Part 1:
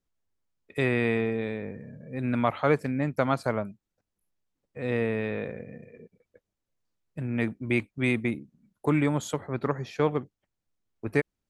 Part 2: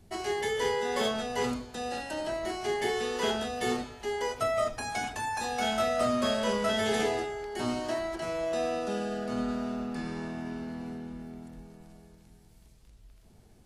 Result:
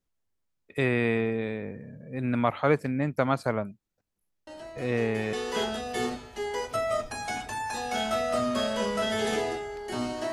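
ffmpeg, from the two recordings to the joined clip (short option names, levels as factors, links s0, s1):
-filter_complex "[1:a]asplit=2[s0][s1];[0:a]apad=whole_dur=10.32,atrim=end=10.32,atrim=end=5.332[s2];[s1]atrim=start=2.998:end=7.99[s3];[s0]atrim=start=2.14:end=3,asetpts=PTS-STARTPTS,volume=0.335,afade=t=in:d=0.004:c=hsin,afade=t=out:st=0.856:d=0.004:c=hsin,adelay=4470[s4];[s2][s3]acrossfade=d=0.004:c1=hsin:c2=hsin[s5];[s5][s4]amix=inputs=2:normalize=0"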